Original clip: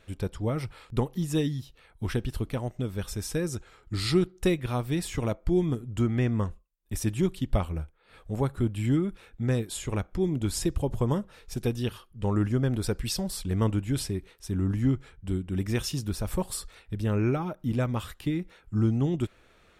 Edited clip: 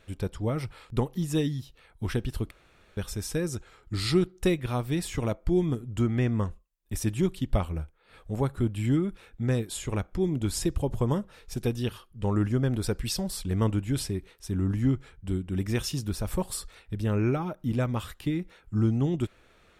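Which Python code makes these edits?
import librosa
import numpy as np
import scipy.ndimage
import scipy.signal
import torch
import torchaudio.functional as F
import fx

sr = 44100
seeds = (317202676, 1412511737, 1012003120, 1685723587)

y = fx.edit(x, sr, fx.room_tone_fill(start_s=2.51, length_s=0.46), tone=tone)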